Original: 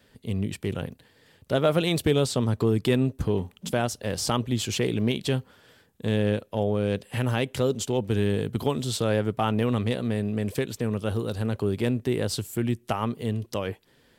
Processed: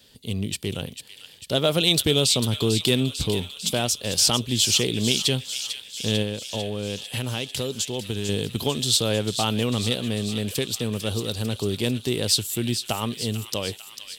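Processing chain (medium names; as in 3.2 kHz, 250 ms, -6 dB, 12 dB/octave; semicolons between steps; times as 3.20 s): resonant high shelf 2.5 kHz +10 dB, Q 1.5; 6.22–8.29 s: compression, threshold -24 dBFS, peak gain reduction 7.5 dB; feedback echo behind a high-pass 447 ms, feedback 67%, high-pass 1.9 kHz, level -8.5 dB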